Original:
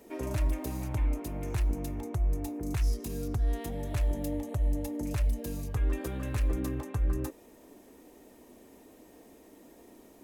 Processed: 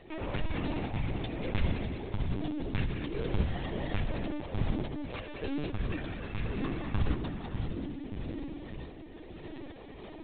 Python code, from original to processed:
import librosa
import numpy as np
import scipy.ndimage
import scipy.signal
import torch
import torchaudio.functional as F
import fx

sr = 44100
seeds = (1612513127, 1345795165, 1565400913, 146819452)

y = fx.tracing_dist(x, sr, depth_ms=0.25)
y = fx.dereverb_blind(y, sr, rt60_s=1.7)
y = fx.clip_asym(y, sr, top_db=-37.0, bottom_db=-24.0)
y = fx.high_shelf(y, sr, hz=2400.0, db=11.0)
y = fx.echo_split(y, sr, split_hz=480.0, low_ms=589, high_ms=192, feedback_pct=52, wet_db=-7.0)
y = fx.rider(y, sr, range_db=5, speed_s=0.5)
y = fx.highpass(y, sr, hz=fx.line((4.83, 130.0), (5.4, 490.0)), slope=24, at=(4.83, 5.4), fade=0.02)
y = fx.rev_spring(y, sr, rt60_s=2.4, pass_ms=(50, 58), chirp_ms=60, drr_db=3.0)
y = fx.mod_noise(y, sr, seeds[0], snr_db=17)
y = fx.lpc_vocoder(y, sr, seeds[1], excitation='pitch_kept', order=16)
y = fx.tremolo_random(y, sr, seeds[2], hz=3.5, depth_pct=55)
y = y * 10.0 ** (5.5 / 20.0)